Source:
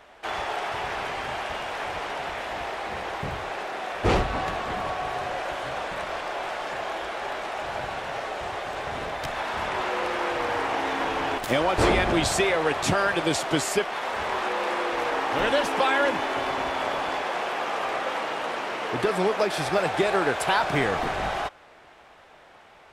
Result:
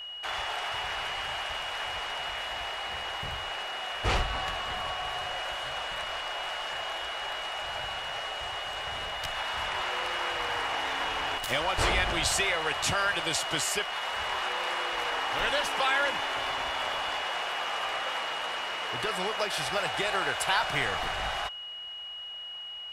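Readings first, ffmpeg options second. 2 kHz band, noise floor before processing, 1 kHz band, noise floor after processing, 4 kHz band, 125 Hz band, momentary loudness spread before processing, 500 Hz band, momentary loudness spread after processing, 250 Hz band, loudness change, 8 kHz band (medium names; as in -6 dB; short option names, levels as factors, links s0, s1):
-2.0 dB, -52 dBFS, -5.0 dB, -41 dBFS, +4.0 dB, -7.0 dB, 9 LU, -9.5 dB, 8 LU, -13.0 dB, -3.5 dB, 0.0 dB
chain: -af "aeval=exprs='val(0)+0.0141*sin(2*PI*2900*n/s)':c=same,equalizer=f=280:t=o:w=2.6:g=-14"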